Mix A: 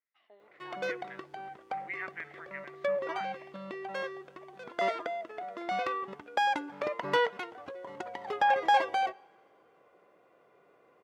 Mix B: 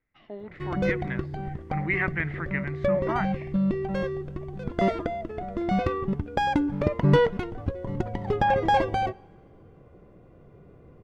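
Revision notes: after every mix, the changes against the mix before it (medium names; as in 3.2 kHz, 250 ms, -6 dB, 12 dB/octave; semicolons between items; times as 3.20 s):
speech +11.5 dB; master: remove high-pass 730 Hz 12 dB/octave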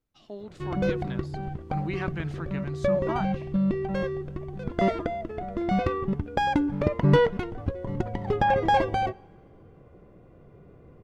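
speech: remove resonant low-pass 2 kHz, resonance Q 8.8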